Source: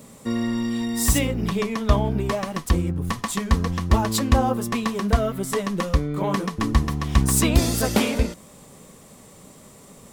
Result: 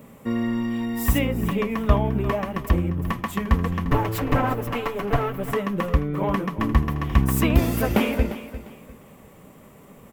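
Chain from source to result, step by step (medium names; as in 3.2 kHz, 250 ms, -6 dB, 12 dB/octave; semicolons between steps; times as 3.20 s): 3.85–5.51 s: comb filter that takes the minimum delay 6.9 ms; high-order bell 6.1 kHz -13 dB; on a send: feedback delay 350 ms, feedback 28%, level -14 dB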